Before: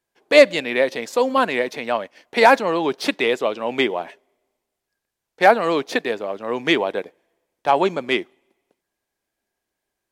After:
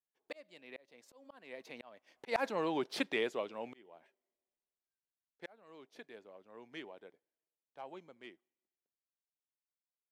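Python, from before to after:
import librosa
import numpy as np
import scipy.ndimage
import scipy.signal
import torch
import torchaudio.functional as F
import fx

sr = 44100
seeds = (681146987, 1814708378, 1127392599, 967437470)

y = fx.doppler_pass(x, sr, speed_mps=14, closest_m=1.8, pass_at_s=2.43)
y = fx.auto_swell(y, sr, attack_ms=776.0)
y = y * 10.0 ** (1.0 / 20.0)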